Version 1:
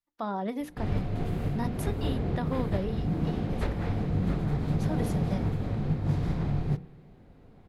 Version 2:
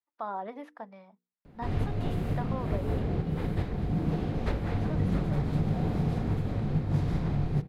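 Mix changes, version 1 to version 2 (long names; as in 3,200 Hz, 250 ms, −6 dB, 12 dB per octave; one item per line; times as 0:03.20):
speech: add resonant band-pass 1,000 Hz, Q 0.99
background: entry +0.85 s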